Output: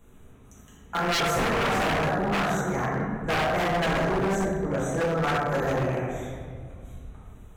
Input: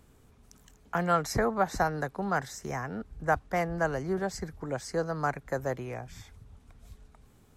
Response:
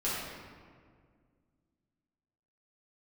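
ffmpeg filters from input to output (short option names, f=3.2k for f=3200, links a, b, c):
-filter_complex "[0:a]asuperstop=centerf=4800:order=20:qfactor=2.8[a];[1:a]atrim=start_sample=2205[b];[a][b]afir=irnorm=-1:irlink=0,aeval=exprs='0.106*(abs(mod(val(0)/0.106+3,4)-2)-1)':c=same"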